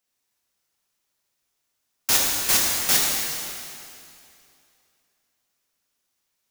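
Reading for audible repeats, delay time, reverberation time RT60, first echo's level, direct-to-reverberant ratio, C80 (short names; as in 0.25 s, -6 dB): none, none, 2.6 s, none, -3.0 dB, 0.5 dB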